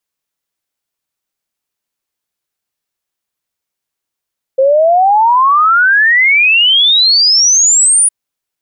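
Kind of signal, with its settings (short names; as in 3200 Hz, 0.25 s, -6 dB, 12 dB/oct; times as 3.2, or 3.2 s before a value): log sweep 520 Hz -> 9800 Hz 3.51 s -5.5 dBFS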